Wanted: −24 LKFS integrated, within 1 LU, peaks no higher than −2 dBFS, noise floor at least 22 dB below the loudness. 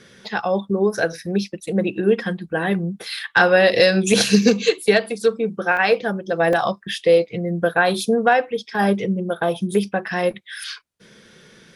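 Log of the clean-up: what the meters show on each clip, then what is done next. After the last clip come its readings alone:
number of dropouts 2; longest dropout 2.4 ms; integrated loudness −19.5 LKFS; sample peak −1.5 dBFS; target loudness −24.0 LKFS
→ repair the gap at 0:05.77/0:06.53, 2.4 ms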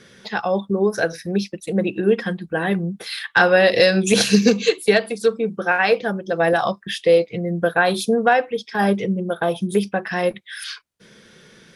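number of dropouts 0; integrated loudness −19.5 LKFS; sample peak −1.5 dBFS; target loudness −24.0 LKFS
→ level −4.5 dB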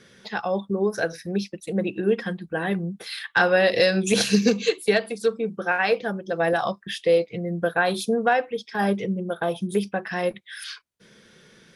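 integrated loudness −24.0 LKFS; sample peak −6.0 dBFS; background noise floor −56 dBFS

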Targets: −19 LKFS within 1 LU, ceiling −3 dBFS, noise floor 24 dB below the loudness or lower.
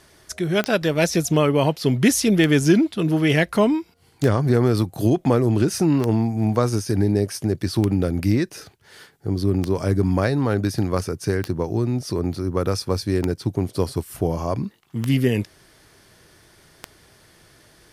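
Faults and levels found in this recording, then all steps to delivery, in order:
number of clicks 10; integrated loudness −21.0 LKFS; sample peak −2.5 dBFS; target loudness −19.0 LKFS
→ click removal
level +2 dB
brickwall limiter −3 dBFS

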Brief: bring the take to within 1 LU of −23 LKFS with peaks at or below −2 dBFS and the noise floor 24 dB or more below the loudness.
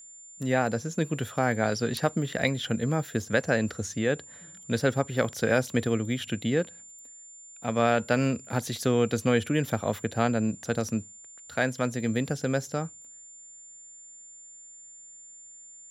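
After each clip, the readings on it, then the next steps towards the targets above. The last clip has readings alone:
interfering tone 7,200 Hz; level of the tone −46 dBFS; integrated loudness −28.0 LKFS; sample peak −9.0 dBFS; target loudness −23.0 LKFS
→ notch filter 7,200 Hz, Q 30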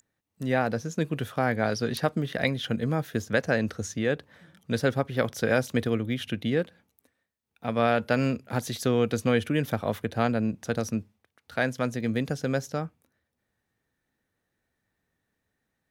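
interfering tone none found; integrated loudness −28.0 LKFS; sample peak −9.0 dBFS; target loudness −23.0 LKFS
→ level +5 dB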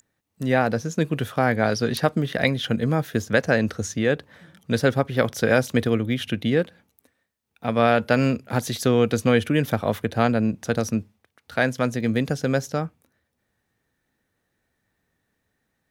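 integrated loudness −23.0 LKFS; sample peak −4.0 dBFS; background noise floor −76 dBFS

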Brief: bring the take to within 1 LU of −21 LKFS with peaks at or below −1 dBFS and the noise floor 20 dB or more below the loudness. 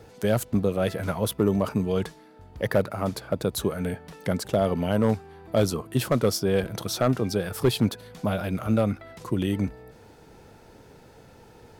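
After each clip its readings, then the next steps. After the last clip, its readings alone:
share of clipped samples 0.3%; peaks flattened at −13.0 dBFS; integrated loudness −26.5 LKFS; sample peak −13.0 dBFS; target loudness −21.0 LKFS
→ clipped peaks rebuilt −13 dBFS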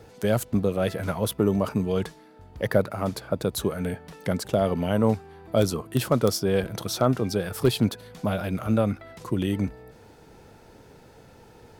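share of clipped samples 0.0%; integrated loudness −26.0 LKFS; sample peak −5.0 dBFS; target loudness −21.0 LKFS
→ level +5 dB
brickwall limiter −1 dBFS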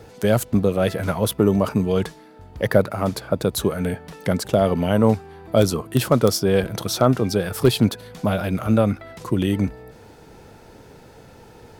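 integrated loudness −21.0 LKFS; sample peak −1.0 dBFS; background noise floor −46 dBFS

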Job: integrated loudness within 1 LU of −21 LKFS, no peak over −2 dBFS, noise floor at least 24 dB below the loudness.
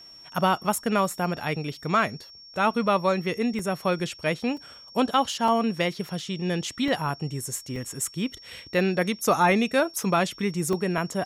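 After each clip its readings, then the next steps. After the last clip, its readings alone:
number of dropouts 7; longest dropout 2.1 ms; interfering tone 5,500 Hz; level of the tone −45 dBFS; integrated loudness −26.0 LKFS; sample peak −10.5 dBFS; target loudness −21.0 LKFS
→ repair the gap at 0:01.40/0:03.59/0:04.57/0:05.48/0:06.88/0:07.76/0:10.73, 2.1 ms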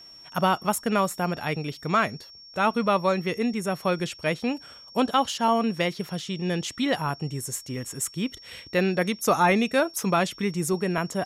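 number of dropouts 0; interfering tone 5,500 Hz; level of the tone −45 dBFS
→ notch filter 5,500 Hz, Q 30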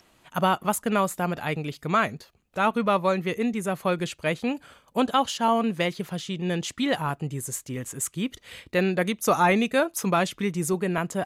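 interfering tone none found; integrated loudness −26.0 LKFS; sample peak −10.5 dBFS; target loudness −21.0 LKFS
→ level +5 dB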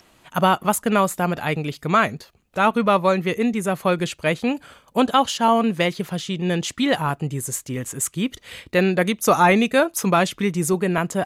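integrated loudness −21.0 LKFS; sample peak −5.5 dBFS; background noise floor −57 dBFS

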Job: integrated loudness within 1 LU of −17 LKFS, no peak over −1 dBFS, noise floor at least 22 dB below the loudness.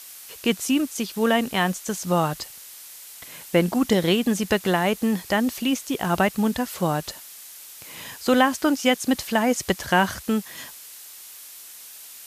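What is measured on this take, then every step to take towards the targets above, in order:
background noise floor −43 dBFS; target noise floor −45 dBFS; integrated loudness −23.0 LKFS; sample peak −5.5 dBFS; target loudness −17.0 LKFS
→ noise reduction from a noise print 6 dB
level +6 dB
brickwall limiter −1 dBFS

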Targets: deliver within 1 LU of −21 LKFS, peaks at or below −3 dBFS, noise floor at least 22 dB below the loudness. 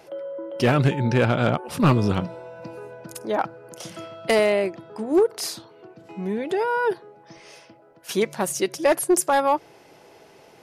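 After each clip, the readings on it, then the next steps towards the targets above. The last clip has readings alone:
share of clipped samples 0.4%; peaks flattened at −11.5 dBFS; integrated loudness −23.0 LKFS; sample peak −11.5 dBFS; target loudness −21.0 LKFS
→ clipped peaks rebuilt −11.5 dBFS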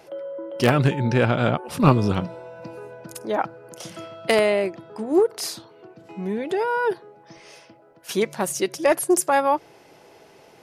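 share of clipped samples 0.0%; integrated loudness −22.5 LKFS; sample peak −2.5 dBFS; target loudness −21.0 LKFS
→ level +1.5 dB
brickwall limiter −3 dBFS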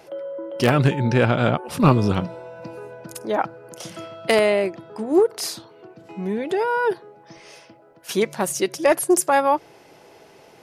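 integrated loudness −21.0 LKFS; sample peak −3.0 dBFS; background noise floor −50 dBFS

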